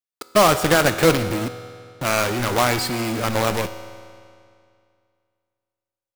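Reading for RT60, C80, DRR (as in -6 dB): 2.3 s, 12.5 dB, 10.0 dB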